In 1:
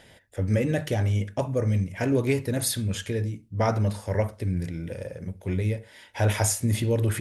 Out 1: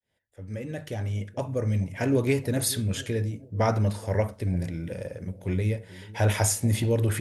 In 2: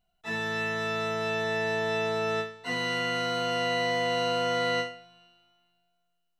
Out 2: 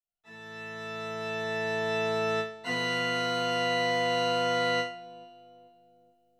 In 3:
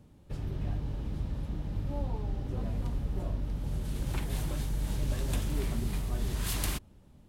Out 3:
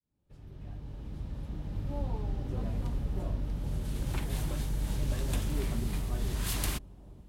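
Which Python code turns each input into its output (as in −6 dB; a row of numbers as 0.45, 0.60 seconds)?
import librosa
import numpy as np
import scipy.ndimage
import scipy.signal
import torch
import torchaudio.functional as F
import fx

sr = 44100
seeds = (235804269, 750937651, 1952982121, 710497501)

y = fx.fade_in_head(x, sr, length_s=2.14)
y = fx.echo_bbd(y, sr, ms=431, stages=2048, feedback_pct=49, wet_db=-19)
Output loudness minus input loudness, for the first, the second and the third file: −1.0, −0.5, −0.5 LU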